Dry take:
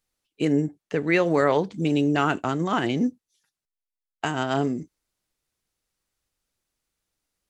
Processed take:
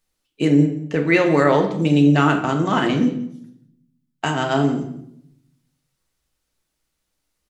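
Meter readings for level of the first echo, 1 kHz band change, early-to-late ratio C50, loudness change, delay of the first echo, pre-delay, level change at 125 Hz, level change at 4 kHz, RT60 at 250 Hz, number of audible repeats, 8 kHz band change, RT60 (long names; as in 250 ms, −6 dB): −18.5 dB, +5.0 dB, 8.5 dB, +6.0 dB, 179 ms, 3 ms, +8.5 dB, +5.5 dB, 1.0 s, 1, can't be measured, 0.75 s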